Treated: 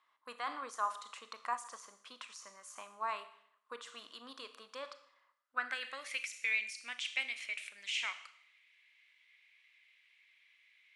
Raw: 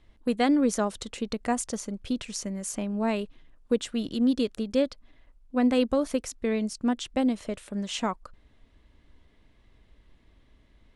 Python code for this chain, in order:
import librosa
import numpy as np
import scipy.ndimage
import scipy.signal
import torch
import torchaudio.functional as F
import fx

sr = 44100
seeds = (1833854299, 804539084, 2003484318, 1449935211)

p1 = np.diff(x, prepend=0.0)
p2 = fx.rev_schroeder(p1, sr, rt60_s=0.68, comb_ms=26, drr_db=10.5)
p3 = fx.over_compress(p2, sr, threshold_db=-44.0, ratio=-0.5)
p4 = p2 + (p3 * 10.0 ** (-2.0 / 20.0))
p5 = fx.filter_sweep_bandpass(p4, sr, from_hz=1100.0, to_hz=2300.0, start_s=5.3, end_s=6.2, q=6.8)
y = p5 * 10.0 ** (16.0 / 20.0)